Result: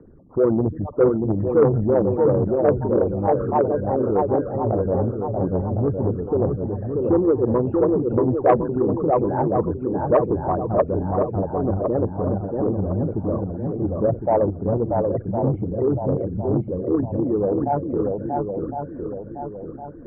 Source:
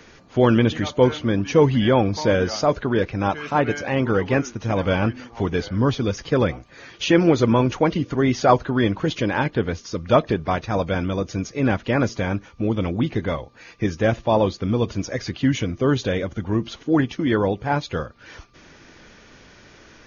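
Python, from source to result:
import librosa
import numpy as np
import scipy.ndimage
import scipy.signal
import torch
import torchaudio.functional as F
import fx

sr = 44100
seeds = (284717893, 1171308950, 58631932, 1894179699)

p1 = fx.envelope_sharpen(x, sr, power=3.0)
p2 = scipy.signal.sosfilt(scipy.signal.butter(6, 1200.0, 'lowpass', fs=sr, output='sos'), p1)
p3 = fx.dynamic_eq(p2, sr, hz=260.0, q=2.6, threshold_db=-31.0, ratio=4.0, max_db=-5)
p4 = p3 + fx.echo_swing(p3, sr, ms=1059, ratio=1.5, feedback_pct=42, wet_db=-3.5, dry=0)
y = fx.transformer_sat(p4, sr, knee_hz=550.0)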